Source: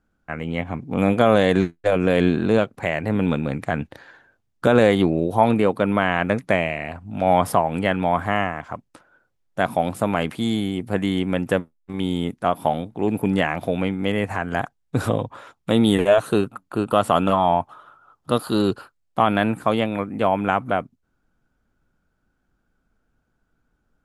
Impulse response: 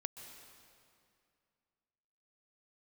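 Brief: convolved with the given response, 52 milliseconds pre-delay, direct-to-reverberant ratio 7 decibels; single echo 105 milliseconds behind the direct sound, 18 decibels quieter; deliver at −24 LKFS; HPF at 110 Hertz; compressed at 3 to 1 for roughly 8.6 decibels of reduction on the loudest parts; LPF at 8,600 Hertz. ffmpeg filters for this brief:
-filter_complex "[0:a]highpass=110,lowpass=8600,acompressor=threshold=-22dB:ratio=3,aecho=1:1:105:0.126,asplit=2[link_01][link_02];[1:a]atrim=start_sample=2205,adelay=52[link_03];[link_02][link_03]afir=irnorm=-1:irlink=0,volume=-5dB[link_04];[link_01][link_04]amix=inputs=2:normalize=0,volume=2.5dB"

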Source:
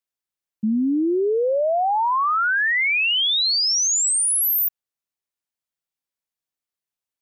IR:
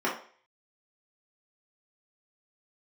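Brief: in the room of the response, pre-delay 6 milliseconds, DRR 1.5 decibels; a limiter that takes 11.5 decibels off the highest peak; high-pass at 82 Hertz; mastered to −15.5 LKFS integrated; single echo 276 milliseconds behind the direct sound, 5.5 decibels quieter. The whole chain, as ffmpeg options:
-filter_complex "[0:a]highpass=82,alimiter=level_in=4.5dB:limit=-24dB:level=0:latency=1,volume=-4.5dB,aecho=1:1:276:0.531,asplit=2[link_01][link_02];[1:a]atrim=start_sample=2205,adelay=6[link_03];[link_02][link_03]afir=irnorm=-1:irlink=0,volume=-13dB[link_04];[link_01][link_04]amix=inputs=2:normalize=0,volume=12dB"

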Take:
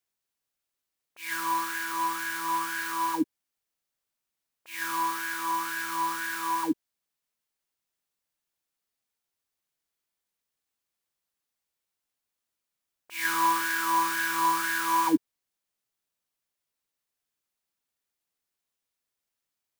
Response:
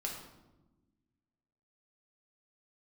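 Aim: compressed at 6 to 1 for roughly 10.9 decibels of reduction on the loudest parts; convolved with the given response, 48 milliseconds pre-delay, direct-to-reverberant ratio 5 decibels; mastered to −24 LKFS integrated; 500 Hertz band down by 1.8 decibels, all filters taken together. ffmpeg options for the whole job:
-filter_complex "[0:a]equalizer=frequency=500:width_type=o:gain=-4,acompressor=threshold=-30dB:ratio=6,asplit=2[link_01][link_02];[1:a]atrim=start_sample=2205,adelay=48[link_03];[link_02][link_03]afir=irnorm=-1:irlink=0,volume=-6dB[link_04];[link_01][link_04]amix=inputs=2:normalize=0,volume=8dB"

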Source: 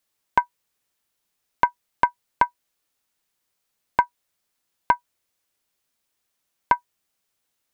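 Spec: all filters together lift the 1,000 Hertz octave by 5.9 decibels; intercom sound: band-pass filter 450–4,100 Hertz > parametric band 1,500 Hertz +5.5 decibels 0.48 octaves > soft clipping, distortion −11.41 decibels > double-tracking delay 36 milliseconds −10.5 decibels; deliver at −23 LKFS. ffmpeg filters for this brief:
ffmpeg -i in.wav -filter_complex "[0:a]highpass=450,lowpass=4100,equalizer=frequency=1000:width_type=o:gain=5.5,equalizer=frequency=1500:width_type=o:width=0.48:gain=5.5,asoftclip=threshold=-7dB,asplit=2[link_01][link_02];[link_02]adelay=36,volume=-10.5dB[link_03];[link_01][link_03]amix=inputs=2:normalize=0" out.wav

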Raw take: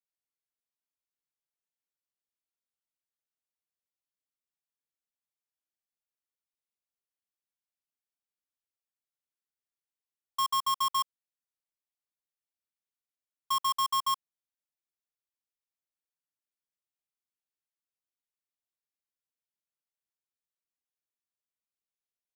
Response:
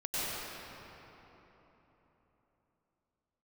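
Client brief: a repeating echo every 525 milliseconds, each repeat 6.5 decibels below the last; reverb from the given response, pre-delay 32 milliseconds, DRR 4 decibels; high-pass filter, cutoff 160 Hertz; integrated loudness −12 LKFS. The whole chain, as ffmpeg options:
-filter_complex "[0:a]highpass=160,aecho=1:1:525|1050|1575|2100|2625|3150:0.473|0.222|0.105|0.0491|0.0231|0.0109,asplit=2[link_01][link_02];[1:a]atrim=start_sample=2205,adelay=32[link_03];[link_02][link_03]afir=irnorm=-1:irlink=0,volume=-11.5dB[link_04];[link_01][link_04]amix=inputs=2:normalize=0,volume=16.5dB"

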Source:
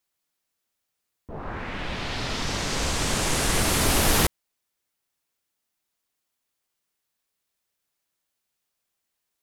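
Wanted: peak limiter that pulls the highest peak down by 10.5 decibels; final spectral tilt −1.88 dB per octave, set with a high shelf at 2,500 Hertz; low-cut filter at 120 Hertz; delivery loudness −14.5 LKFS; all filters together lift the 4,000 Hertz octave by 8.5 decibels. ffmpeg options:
ffmpeg -i in.wav -af "highpass=120,highshelf=frequency=2500:gain=7,equalizer=frequency=4000:width_type=o:gain=4.5,volume=9.5dB,alimiter=limit=-6dB:level=0:latency=1" out.wav

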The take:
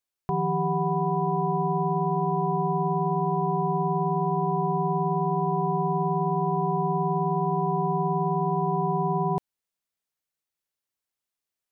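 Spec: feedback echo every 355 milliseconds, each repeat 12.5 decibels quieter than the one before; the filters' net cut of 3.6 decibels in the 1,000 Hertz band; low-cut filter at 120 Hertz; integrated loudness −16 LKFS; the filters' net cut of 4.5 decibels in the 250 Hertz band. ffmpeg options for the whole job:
ffmpeg -i in.wav -af "highpass=120,equalizer=frequency=250:width_type=o:gain=-8,equalizer=frequency=1000:width_type=o:gain=-4,aecho=1:1:355|710|1065:0.237|0.0569|0.0137,volume=13.5dB" out.wav

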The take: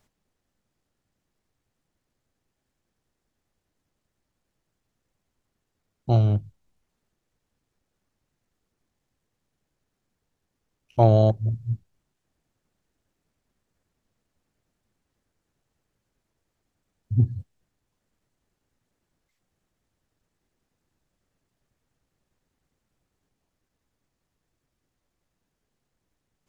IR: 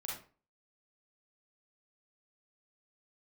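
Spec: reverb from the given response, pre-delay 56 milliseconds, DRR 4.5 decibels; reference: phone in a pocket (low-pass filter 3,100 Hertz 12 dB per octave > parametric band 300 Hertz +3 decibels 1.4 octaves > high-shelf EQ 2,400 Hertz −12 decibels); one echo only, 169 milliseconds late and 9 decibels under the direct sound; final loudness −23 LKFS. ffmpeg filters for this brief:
-filter_complex "[0:a]aecho=1:1:169:0.355,asplit=2[link_01][link_02];[1:a]atrim=start_sample=2205,adelay=56[link_03];[link_02][link_03]afir=irnorm=-1:irlink=0,volume=-4dB[link_04];[link_01][link_04]amix=inputs=2:normalize=0,lowpass=3100,equalizer=frequency=300:width_type=o:width=1.4:gain=3,highshelf=frequency=2400:gain=-12,volume=-1.5dB"

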